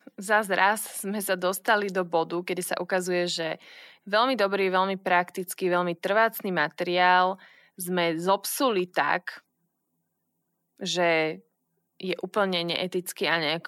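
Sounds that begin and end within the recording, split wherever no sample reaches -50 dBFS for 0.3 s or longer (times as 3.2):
10.78–11.41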